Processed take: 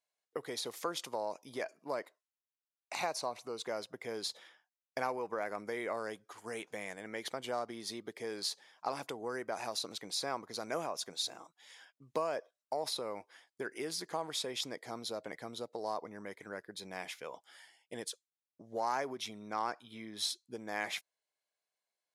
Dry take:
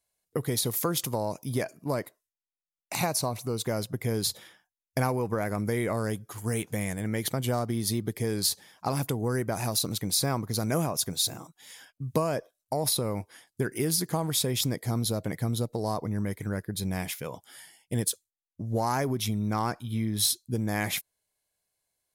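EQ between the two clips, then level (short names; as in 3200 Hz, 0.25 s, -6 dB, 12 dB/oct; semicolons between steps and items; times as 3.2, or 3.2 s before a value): HPF 480 Hz 12 dB/oct; LPF 6900 Hz 12 dB/oct; high shelf 4600 Hz -5 dB; -4.5 dB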